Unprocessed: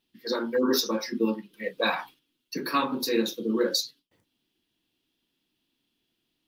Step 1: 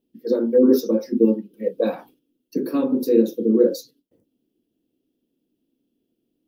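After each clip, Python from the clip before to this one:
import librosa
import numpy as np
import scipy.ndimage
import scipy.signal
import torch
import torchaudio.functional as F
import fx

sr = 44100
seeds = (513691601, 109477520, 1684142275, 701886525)

y = fx.graphic_eq_10(x, sr, hz=(250, 500, 1000, 2000, 4000, 8000), db=(9, 11, -11, -11, -10, -5))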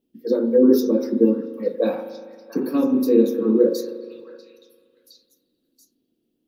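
y = fx.echo_stepped(x, sr, ms=680, hz=1300.0, octaves=1.4, feedback_pct=70, wet_db=-7.0)
y = fx.rev_spring(y, sr, rt60_s=1.9, pass_ms=(39,), chirp_ms=50, drr_db=9.5)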